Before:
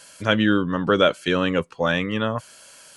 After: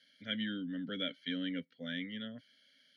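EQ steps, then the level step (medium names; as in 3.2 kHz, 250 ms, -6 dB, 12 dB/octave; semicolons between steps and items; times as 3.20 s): vowel filter i; high-pass 120 Hz; static phaser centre 1.7 kHz, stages 8; +1.0 dB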